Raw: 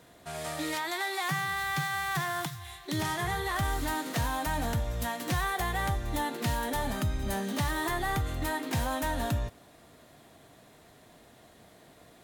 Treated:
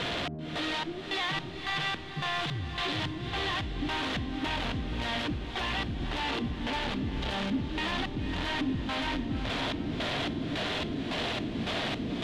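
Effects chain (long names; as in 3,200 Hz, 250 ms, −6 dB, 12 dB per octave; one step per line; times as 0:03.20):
sign of each sample alone
auto-filter low-pass square 1.8 Hz 280–3,300 Hz
feedback delay with all-pass diffusion 525 ms, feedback 50%, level −7 dB
level −1 dB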